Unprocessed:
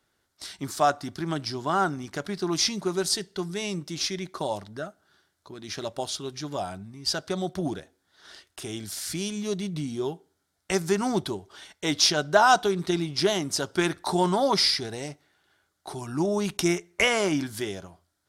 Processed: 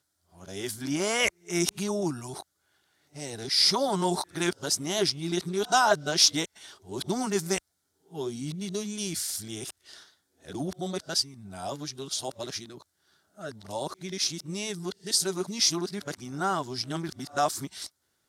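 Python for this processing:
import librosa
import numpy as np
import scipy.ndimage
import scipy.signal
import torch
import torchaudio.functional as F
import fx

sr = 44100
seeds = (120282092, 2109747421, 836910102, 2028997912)

y = x[::-1].copy()
y = scipy.signal.sosfilt(scipy.signal.butter(2, 51.0, 'highpass', fs=sr, output='sos'), y)
y = fx.bass_treble(y, sr, bass_db=1, treble_db=7)
y = F.gain(torch.from_numpy(y), -4.0).numpy()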